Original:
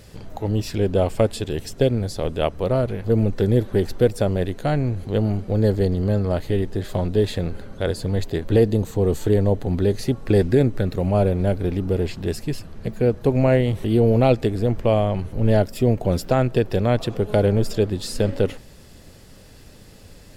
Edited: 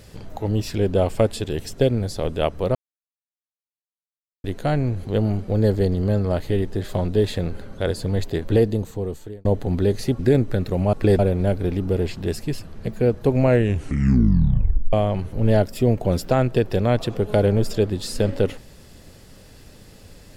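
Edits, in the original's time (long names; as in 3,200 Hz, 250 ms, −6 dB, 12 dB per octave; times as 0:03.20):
0:02.75–0:04.44: silence
0:08.48–0:09.45: fade out linear
0:10.19–0:10.45: move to 0:11.19
0:13.47: tape stop 1.46 s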